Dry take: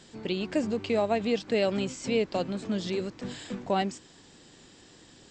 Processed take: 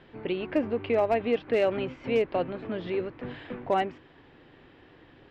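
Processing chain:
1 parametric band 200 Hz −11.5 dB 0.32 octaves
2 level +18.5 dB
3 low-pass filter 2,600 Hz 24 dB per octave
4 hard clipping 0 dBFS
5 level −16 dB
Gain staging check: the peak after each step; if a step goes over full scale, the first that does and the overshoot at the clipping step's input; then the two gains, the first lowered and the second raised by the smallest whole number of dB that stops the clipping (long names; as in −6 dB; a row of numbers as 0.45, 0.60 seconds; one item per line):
−15.0, +3.5, +3.5, 0.0, −16.0 dBFS
step 2, 3.5 dB
step 2 +14.5 dB, step 5 −12 dB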